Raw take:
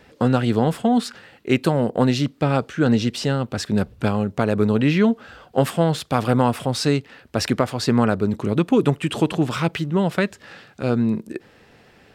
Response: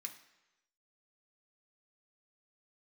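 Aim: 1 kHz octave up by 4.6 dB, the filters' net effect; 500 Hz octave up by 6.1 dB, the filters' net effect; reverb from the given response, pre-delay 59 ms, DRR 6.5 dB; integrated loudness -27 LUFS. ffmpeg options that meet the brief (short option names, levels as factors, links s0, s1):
-filter_complex "[0:a]equalizer=f=500:t=o:g=6.5,equalizer=f=1000:t=o:g=3.5,asplit=2[s0][s1];[1:a]atrim=start_sample=2205,adelay=59[s2];[s1][s2]afir=irnorm=-1:irlink=0,volume=0.75[s3];[s0][s3]amix=inputs=2:normalize=0,volume=0.335"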